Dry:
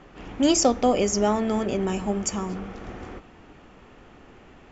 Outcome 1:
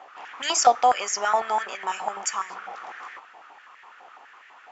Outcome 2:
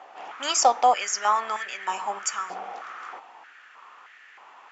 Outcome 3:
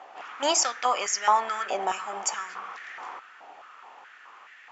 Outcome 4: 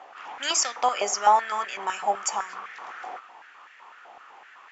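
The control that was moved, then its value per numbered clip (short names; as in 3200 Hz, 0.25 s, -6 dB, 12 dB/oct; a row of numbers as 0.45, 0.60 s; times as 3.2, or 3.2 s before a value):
stepped high-pass, rate: 12, 3.2, 4.7, 7.9 Hz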